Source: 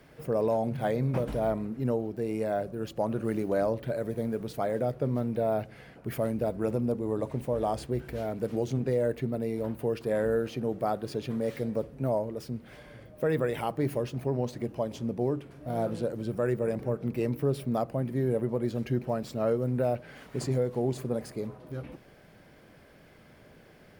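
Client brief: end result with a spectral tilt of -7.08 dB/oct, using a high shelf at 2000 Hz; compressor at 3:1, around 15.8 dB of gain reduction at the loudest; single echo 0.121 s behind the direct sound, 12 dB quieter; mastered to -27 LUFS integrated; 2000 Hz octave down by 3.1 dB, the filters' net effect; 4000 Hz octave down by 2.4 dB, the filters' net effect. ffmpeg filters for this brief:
-af "highshelf=f=2k:g=4.5,equalizer=f=2k:t=o:g=-5.5,equalizer=f=4k:t=o:g=-6,acompressor=threshold=-46dB:ratio=3,aecho=1:1:121:0.251,volume=18.5dB"

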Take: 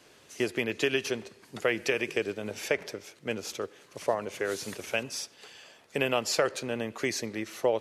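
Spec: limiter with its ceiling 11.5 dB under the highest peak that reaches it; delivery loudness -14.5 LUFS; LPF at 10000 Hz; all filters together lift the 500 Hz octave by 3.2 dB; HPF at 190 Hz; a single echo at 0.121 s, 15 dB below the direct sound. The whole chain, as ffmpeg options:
-af "highpass=190,lowpass=10k,equalizer=f=500:t=o:g=4,alimiter=limit=-21.5dB:level=0:latency=1,aecho=1:1:121:0.178,volume=19.5dB"

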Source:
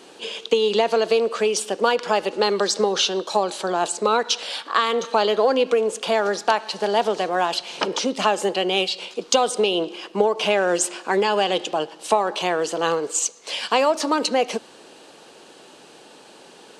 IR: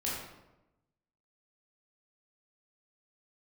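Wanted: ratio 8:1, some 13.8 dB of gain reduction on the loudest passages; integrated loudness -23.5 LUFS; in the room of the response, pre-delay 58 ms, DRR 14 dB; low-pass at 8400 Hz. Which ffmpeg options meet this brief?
-filter_complex "[0:a]lowpass=8.4k,acompressor=threshold=-29dB:ratio=8,asplit=2[a][b];[1:a]atrim=start_sample=2205,adelay=58[c];[b][c]afir=irnorm=-1:irlink=0,volume=-18.5dB[d];[a][d]amix=inputs=2:normalize=0,volume=9dB"

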